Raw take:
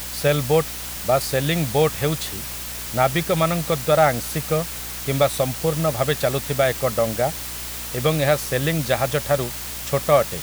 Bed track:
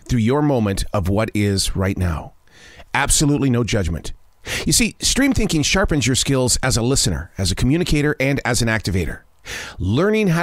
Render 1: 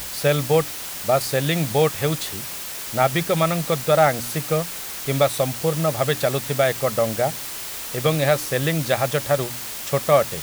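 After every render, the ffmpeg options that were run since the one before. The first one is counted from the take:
-af "bandreject=f=60:t=h:w=4,bandreject=f=120:t=h:w=4,bandreject=f=180:t=h:w=4,bandreject=f=240:t=h:w=4,bandreject=f=300:t=h:w=4"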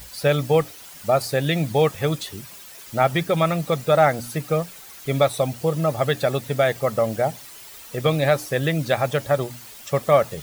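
-af "afftdn=nr=12:nf=-32"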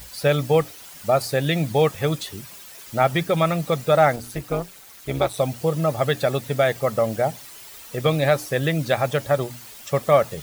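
-filter_complex "[0:a]asettb=1/sr,asplit=3[a][b][c];[a]atrim=end=4.164[d];[b]atrim=start=4.16:end=5.38,asetpts=PTS-STARTPTS,afade=t=in:d=0.004:c=qsin,afade=t=out:st=1.216:d=0.004:c=qsin,tremolo=f=200:d=0.75[e];[c]atrim=start=5.376[f];[d][e]acrossfade=d=0.004:c1=hsin:c2=qsin[g];[g][f]acrossfade=d=0.004:c1=qsin:c2=hsin"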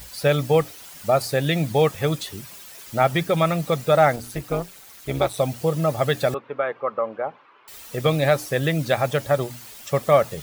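-filter_complex "[0:a]asettb=1/sr,asplit=3[a][b][c];[a]atrim=end=6.344[d];[b]atrim=start=6.34:end=7.68,asetpts=PTS-STARTPTS,afade=t=in:d=0.004:c=qsin,afade=t=out:st=1.336:d=0.004:c=qsin,highpass=430,equalizer=f=680:t=q:w=4:g=-9,equalizer=f=1.1k:t=q:w=4:g=6,equalizer=f=1.9k:t=q:w=4:g=-9,lowpass=f=2.1k:w=0.5412,lowpass=f=2.1k:w=1.3066[e];[c]atrim=start=7.676[f];[d][e]acrossfade=d=0.004:c1=hsin:c2=qsin[g];[g][f]acrossfade=d=0.004:c1=qsin:c2=hsin"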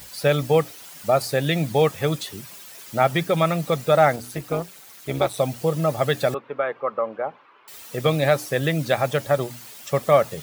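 -af "highpass=100"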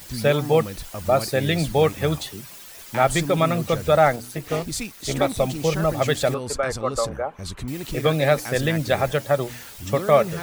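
-filter_complex "[1:a]volume=-14dB[a];[0:a][a]amix=inputs=2:normalize=0"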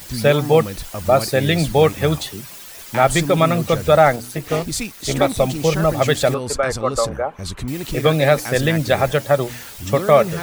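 -af "volume=4.5dB,alimiter=limit=-1dB:level=0:latency=1"

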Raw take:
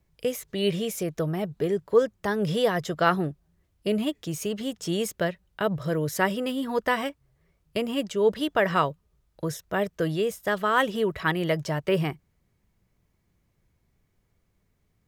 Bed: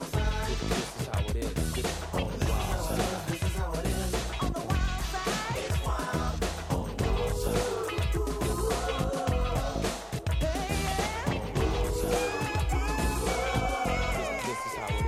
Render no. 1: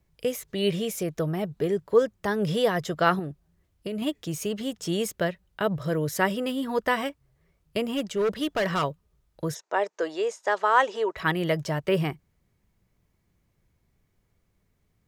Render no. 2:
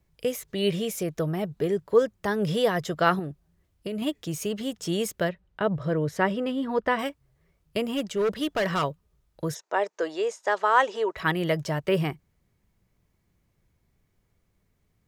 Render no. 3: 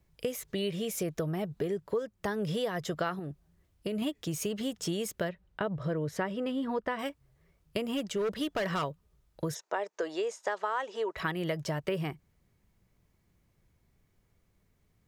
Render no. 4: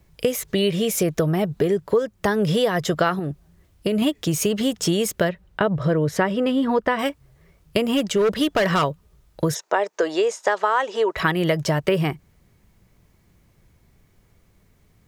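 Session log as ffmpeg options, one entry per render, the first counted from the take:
-filter_complex "[0:a]asettb=1/sr,asplit=3[a][b][c];[a]atrim=end=3.194[d];[b]atrim=start=3.19:end=4.02,asetpts=PTS-STARTPTS,afade=t=in:d=0.004:c=qsin,afade=t=out:st=0.826:d=0.004:c=qsin,acompressor=threshold=-28dB:ratio=5:attack=3.2:release=140:knee=1:detection=peak[e];[c]atrim=start=4.016[f];[d][e]acrossfade=d=0.004:c1=hsin:c2=qsin[g];[g][f]acrossfade=d=0.004:c1=qsin:c2=hsin,asettb=1/sr,asplit=3[h][i][j];[h]atrim=end=7.844[k];[i]atrim=start=7.84:end=8.84,asetpts=PTS-STARTPTS,afade=t=in:d=0.004:c=qsin,afade=t=out:st=0.996:d=0.004:c=qsin,volume=21dB,asoftclip=hard,volume=-21dB[l];[j]atrim=start=8.836[m];[k][l]acrossfade=d=0.004:c1=hsin:c2=qsin[n];[n][m]acrossfade=d=0.004:c1=qsin:c2=hsin,asplit=3[o][p][q];[o]afade=t=out:st=9.54:d=0.02[r];[p]highpass=f=360:w=0.5412,highpass=f=360:w=1.3066,equalizer=f=890:t=q:w=4:g=9,equalizer=f=3.2k:t=q:w=4:g=-5,equalizer=f=6.7k:t=q:w=4:g=5,lowpass=f=7.3k:w=0.5412,lowpass=f=7.3k:w=1.3066,afade=t=in:st=9.54:d=0.02,afade=t=out:st=11.16:d=0.02[s];[q]afade=t=in:st=11.16:d=0.02[t];[r][s][t]amix=inputs=3:normalize=0"
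-filter_complex "[0:a]asettb=1/sr,asplit=3[a][b][c];[a]atrim=end=5.294[d];[b]atrim=start=5.29:end=6.99,asetpts=PTS-STARTPTS,afade=t=in:d=0.004:c=qsin,afade=t=out:st=1.696:d=0.004:c=qsin,aemphasis=mode=reproduction:type=75fm[e];[c]atrim=start=6.986[f];[d][e]acrossfade=d=0.004:c1=hsin:c2=qsin[g];[g][f]acrossfade=d=0.004:c1=qsin:c2=hsin"
-af "acompressor=threshold=-29dB:ratio=6"
-af "volume=12dB"

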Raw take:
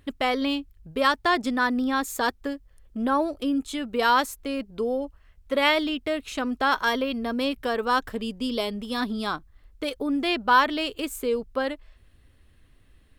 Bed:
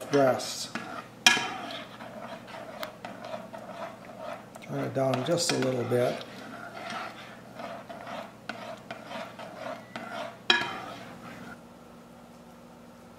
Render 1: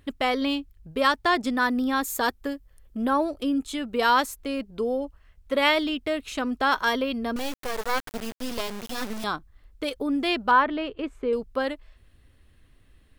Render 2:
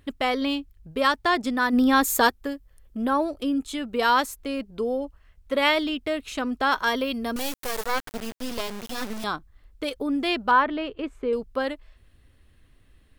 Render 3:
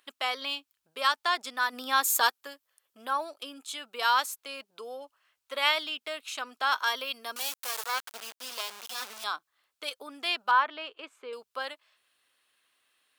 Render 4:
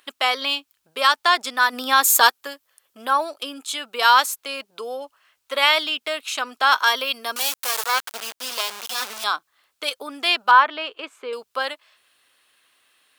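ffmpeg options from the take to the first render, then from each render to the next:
-filter_complex "[0:a]asettb=1/sr,asplit=3[a][b][c];[a]atrim=end=1.574[d];[b]atrim=start=1.57:end=3.13,asetpts=PTS-STARTPTS,afade=t=in:d=0.004:c=qsin,afade=t=out:st=1.556:d=0.004:c=qsin,equalizer=f=14k:t=o:w=0.61:g=7.5[e];[c]atrim=start=3.126[f];[d][e]acrossfade=d=0.004:c1=hsin:c2=qsin[g];[g][f]acrossfade=d=0.004:c1=qsin:c2=hsin,asettb=1/sr,asplit=3[h][i][j];[h]atrim=end=7.364[k];[i]atrim=start=7.36:end=9.24,asetpts=PTS-STARTPTS,afade=t=in:d=0.004:c=qsin,afade=t=out:st=1.876:d=0.004:c=qsin,acrusher=bits=3:dc=4:mix=0:aa=0.000001[l];[j]atrim=start=9.236[m];[k][l]acrossfade=d=0.004:c1=hsin:c2=qsin[n];[n][m]acrossfade=d=0.004:c1=qsin:c2=hsin,asettb=1/sr,asplit=3[o][p][q];[o]atrim=end=10.514[r];[p]atrim=start=10.51:end=11.33,asetpts=PTS-STARTPTS,afade=t=in:d=0.004:c=qsin,afade=t=out:st=0.816:d=0.004:c=qsin,lowpass=1.9k[s];[q]atrim=start=11.326[t];[r][s]acrossfade=d=0.004:c1=hsin:c2=qsin[u];[u][t]acrossfade=d=0.004:c1=qsin:c2=hsin"
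-filter_complex "[0:a]asplit=3[a][b][c];[a]afade=t=out:st=1.72:d=0.02[d];[b]acontrast=57,afade=t=in:st=1.72:d=0.02,afade=t=out:st=2.27:d=0.02[e];[c]afade=t=in:st=2.27:d=0.02[f];[d][e][f]amix=inputs=3:normalize=0,asettb=1/sr,asplit=3[g][h][i];[g]atrim=end=6.964[j];[h]atrim=start=6.96:end=7.86,asetpts=PTS-STARTPTS,afade=t=in:d=0.004:c=qsin,afade=t=out:st=0.896:d=0.004:c=qsin,aemphasis=mode=production:type=cd[k];[i]atrim=start=7.856[l];[j][k]acrossfade=d=0.004:c1=hsin:c2=qsin[m];[m][l]acrossfade=d=0.004:c1=qsin:c2=hsin"
-af "highpass=1.1k,equalizer=f=1.9k:w=2.9:g=-6"
-af "volume=10dB,alimiter=limit=-3dB:level=0:latency=1"

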